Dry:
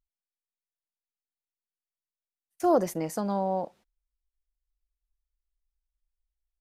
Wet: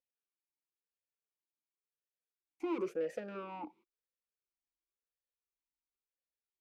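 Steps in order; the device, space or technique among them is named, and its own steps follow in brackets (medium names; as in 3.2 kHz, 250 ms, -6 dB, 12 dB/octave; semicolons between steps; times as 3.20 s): talk box (valve stage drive 32 dB, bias 0.55; talking filter e-u 0.96 Hz); trim +9.5 dB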